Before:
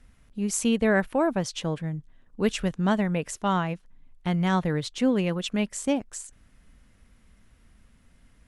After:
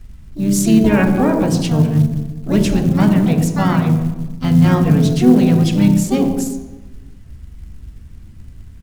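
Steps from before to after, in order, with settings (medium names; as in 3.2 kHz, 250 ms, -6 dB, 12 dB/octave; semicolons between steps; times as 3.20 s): resampled via 22.05 kHz; on a send at -5 dB: reverberation RT60 1.1 s, pre-delay 3 ms; on the sum: harmony voices -7 st -15 dB, -3 st -15 dB, +7 st -5 dB; tone controls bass +12 dB, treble +3 dB; hum notches 60/120/180/240/300/360/420/480/540 Hz; in parallel at -1.5 dB: peak limiter -12 dBFS, peak gain reduction 11 dB; on the sum: short-mantissa float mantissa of 4-bit; speed mistake 25 fps video run at 24 fps; trim -1.5 dB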